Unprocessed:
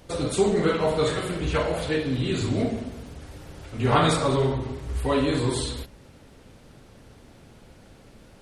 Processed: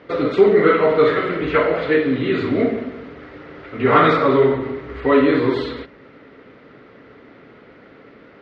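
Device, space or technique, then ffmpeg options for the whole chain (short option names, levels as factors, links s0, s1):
overdrive pedal into a guitar cabinet: -filter_complex "[0:a]asplit=2[s0][s1];[s1]highpass=f=720:p=1,volume=3.55,asoftclip=type=tanh:threshold=0.501[s2];[s0][s2]amix=inputs=2:normalize=0,lowpass=f=1100:p=1,volume=0.501,highpass=79,equalizer=f=86:t=q:w=4:g=-8,equalizer=f=280:t=q:w=4:g=7,equalizer=f=430:t=q:w=4:g=7,equalizer=f=830:t=q:w=4:g=-5,equalizer=f=1300:t=q:w=4:g=7,equalizer=f=2000:t=q:w=4:g=10,lowpass=f=4400:w=0.5412,lowpass=f=4400:w=1.3066,volume=1.5"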